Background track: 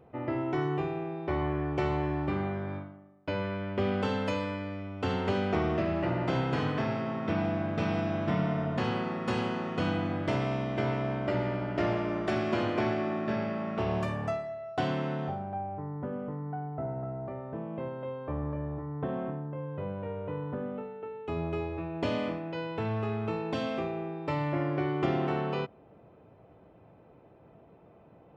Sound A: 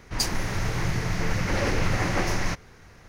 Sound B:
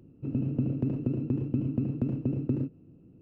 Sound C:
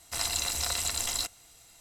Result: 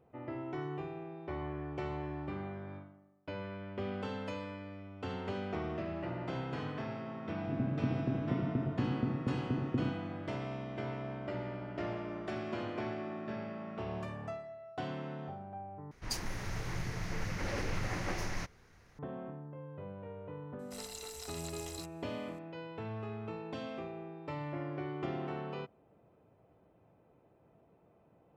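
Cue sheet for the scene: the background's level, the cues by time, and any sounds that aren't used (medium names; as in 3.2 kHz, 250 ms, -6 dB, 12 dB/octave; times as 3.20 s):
background track -9.5 dB
7.25 s: add B -5.5 dB
15.91 s: replace with A -11.5 dB
20.59 s: add C -16.5 dB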